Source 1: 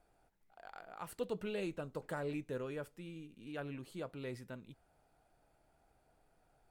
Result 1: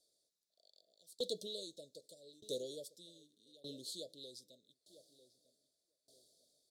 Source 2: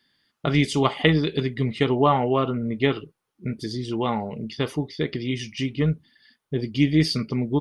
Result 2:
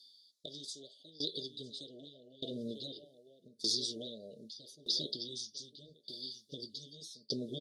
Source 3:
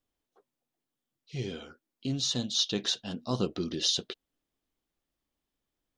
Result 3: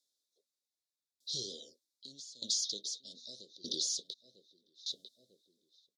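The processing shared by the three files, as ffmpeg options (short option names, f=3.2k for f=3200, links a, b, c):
-filter_complex "[0:a]tiltshelf=f=1.3k:g=-7.5,asplit=2[a][b];[b]adelay=947,lowpass=f=1.9k:p=1,volume=-19.5dB,asplit=2[c][d];[d]adelay=947,lowpass=f=1.9k:p=1,volume=0.31,asplit=2[e][f];[f]adelay=947,lowpass=f=1.9k:p=1,volume=0.31[g];[c][e][g]amix=inputs=3:normalize=0[h];[a][h]amix=inputs=2:normalize=0,dynaudnorm=f=360:g=5:m=10dB,bandpass=f=2k:t=q:w=0.69:csg=0,afftfilt=real='re*lt(hypot(re,im),0.126)':imag='im*lt(hypot(re,im),0.126)':win_size=1024:overlap=0.75,highshelf=f=2.8k:g=4,acompressor=threshold=-35dB:ratio=6,aeval=exprs='0.188*(cos(1*acos(clip(val(0)/0.188,-1,1)))-cos(1*PI/2))+0.00299*(cos(3*acos(clip(val(0)/0.188,-1,1)))-cos(3*PI/2))':c=same,asuperstop=centerf=1500:order=20:qfactor=0.5,aeval=exprs='val(0)*pow(10,-23*if(lt(mod(0.82*n/s,1),2*abs(0.82)/1000),1-mod(0.82*n/s,1)/(2*abs(0.82)/1000),(mod(0.82*n/s,1)-2*abs(0.82)/1000)/(1-2*abs(0.82)/1000))/20)':c=same,volume=8.5dB"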